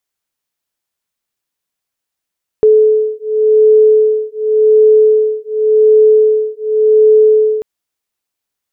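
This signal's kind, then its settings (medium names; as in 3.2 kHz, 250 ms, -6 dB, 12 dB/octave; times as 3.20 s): beating tones 431 Hz, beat 0.89 Hz, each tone -9.5 dBFS 4.99 s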